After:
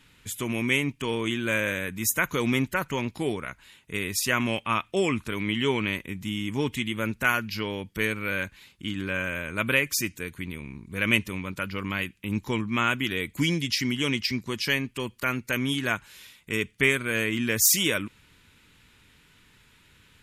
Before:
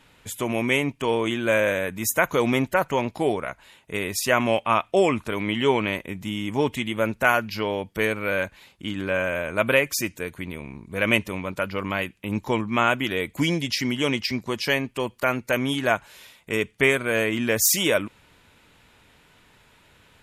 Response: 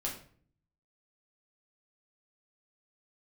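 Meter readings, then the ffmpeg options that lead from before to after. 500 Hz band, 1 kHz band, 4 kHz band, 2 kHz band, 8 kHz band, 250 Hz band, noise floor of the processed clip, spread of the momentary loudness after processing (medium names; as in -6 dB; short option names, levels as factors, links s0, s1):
-7.5 dB, -6.5 dB, -0.5 dB, -2.0 dB, 0.0 dB, -2.0 dB, -60 dBFS, 10 LU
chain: -af "equalizer=f=670:t=o:w=1.2:g=-13"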